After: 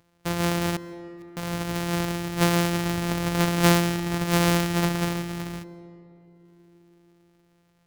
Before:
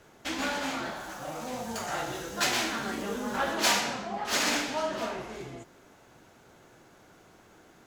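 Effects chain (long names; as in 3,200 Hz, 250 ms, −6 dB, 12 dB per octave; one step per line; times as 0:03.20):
samples sorted by size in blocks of 256 samples
noise gate −43 dBFS, range −50 dB
upward compression, threshold −46 dBFS
0:00.76–0:01.37: gate with flip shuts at −31 dBFS, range −37 dB
on a send: feedback echo with a band-pass in the loop 157 ms, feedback 82%, band-pass 360 Hz, level −16 dB
on the sum: comb and all-pass reverb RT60 3.1 s, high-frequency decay 0.6×, pre-delay 90 ms, DRR 18.5 dB
level +6.5 dB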